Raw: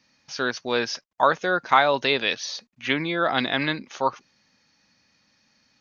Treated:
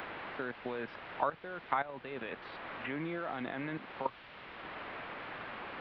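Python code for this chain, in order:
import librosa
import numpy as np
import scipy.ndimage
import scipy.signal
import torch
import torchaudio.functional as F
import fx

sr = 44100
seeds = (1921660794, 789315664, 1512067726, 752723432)

p1 = fx.fade_in_head(x, sr, length_s=0.74)
p2 = np.sign(p1) * np.maximum(np.abs(p1) - 10.0 ** (-29.5 / 20.0), 0.0)
p3 = p1 + (p2 * 10.0 ** (-11.0 / 20.0))
p4 = fx.level_steps(p3, sr, step_db=17)
p5 = fx.low_shelf(p4, sr, hz=440.0, db=7.0)
p6 = fx.quant_dither(p5, sr, seeds[0], bits=6, dither='triangular')
p7 = scipy.ndimage.gaussian_filter1d(p6, 4.1, mode='constant')
p8 = fx.tilt_eq(p7, sr, slope=2.0)
p9 = fx.band_squash(p8, sr, depth_pct=70)
y = p9 * 10.0 ** (-5.0 / 20.0)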